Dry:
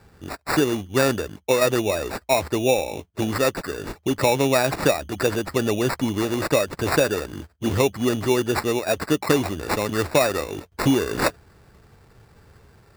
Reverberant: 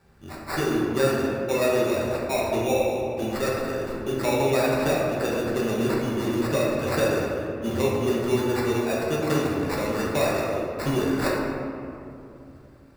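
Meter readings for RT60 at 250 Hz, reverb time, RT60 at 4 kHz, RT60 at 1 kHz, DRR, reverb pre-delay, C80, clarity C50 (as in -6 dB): 3.4 s, 2.7 s, 1.2 s, 2.5 s, -5.0 dB, 5 ms, 1.0 dB, -1.0 dB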